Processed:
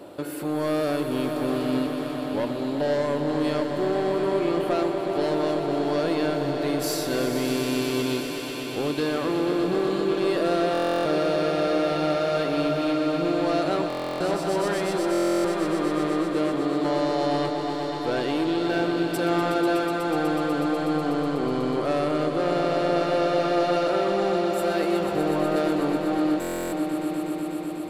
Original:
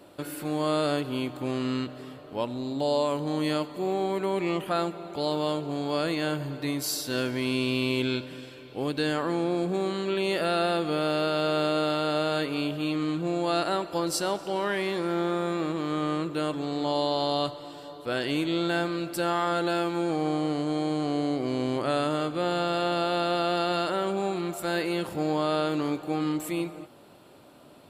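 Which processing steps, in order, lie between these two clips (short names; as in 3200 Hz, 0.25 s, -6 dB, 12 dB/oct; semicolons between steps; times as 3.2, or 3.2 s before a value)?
24.99–25.56 delta modulation 16 kbps, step -35 dBFS; bell 460 Hz +7 dB 2.5 oct; in parallel at -1 dB: compressor, threshold -39 dBFS, peak gain reduction 21 dB; on the sum: soft clip -18 dBFS, distortion -14 dB; swelling echo 0.123 s, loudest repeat 5, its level -10 dB; stuck buffer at 10.73/13.88/15.12/26.4, samples 1024, times 13; gain -2 dB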